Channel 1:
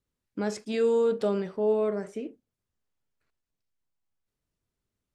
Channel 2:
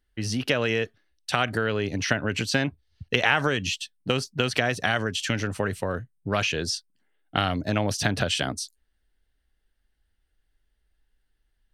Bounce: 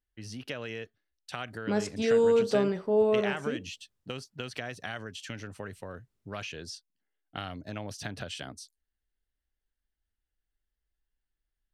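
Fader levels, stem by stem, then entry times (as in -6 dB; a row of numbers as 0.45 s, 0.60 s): +1.0 dB, -13.5 dB; 1.30 s, 0.00 s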